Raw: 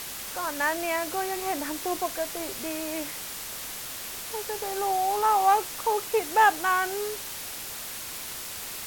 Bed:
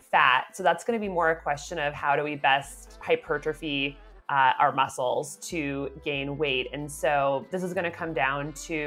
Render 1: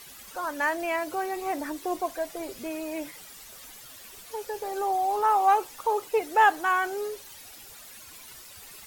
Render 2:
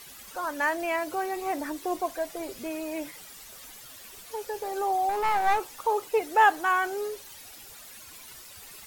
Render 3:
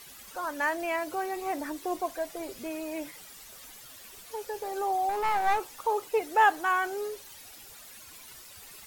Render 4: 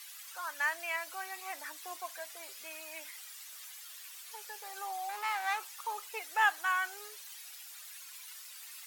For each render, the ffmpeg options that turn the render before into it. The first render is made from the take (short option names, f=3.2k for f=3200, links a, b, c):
-af "afftdn=nr=13:nf=-37"
-filter_complex "[0:a]asettb=1/sr,asplit=3[a][b][c];[a]atrim=end=5.094[d];[b]atrim=start=5.09:end=5.71,asetpts=PTS-STARTPTS,afade=t=in:d=0.004:c=qsin,afade=t=out:st=0.616:d=0.004:c=qsin,aeval=exprs='clip(val(0),-1,0.0398)':c=same[e];[c]atrim=start=5.706[f];[d][e]acrossfade=d=0.004:c1=hsin:c2=qsin[g];[g][f]acrossfade=d=0.004:c1=qsin:c2=hsin"
-af "volume=-2dB"
-af "highpass=1.4k"